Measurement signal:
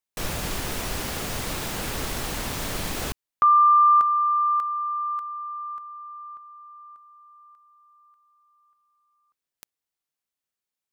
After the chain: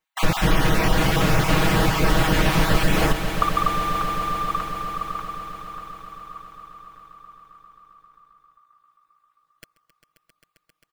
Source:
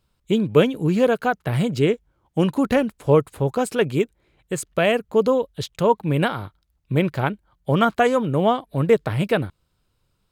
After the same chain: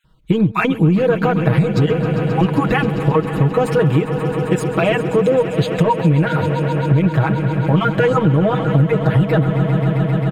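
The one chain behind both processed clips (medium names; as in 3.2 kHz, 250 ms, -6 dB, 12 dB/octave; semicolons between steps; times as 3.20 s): random holes in the spectrogram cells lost 20%; in parallel at -3.5 dB: saturation -20.5 dBFS; on the sum: bass shelf 260 Hz -5 dB; peak limiter -14 dBFS; tone controls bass +7 dB, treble -12 dB; comb 6.3 ms, depth 88%; on a send: echo with a slow build-up 133 ms, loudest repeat 5, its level -15 dB; on the sum: compression, threshold -16 dBFS; trim +5.5 dB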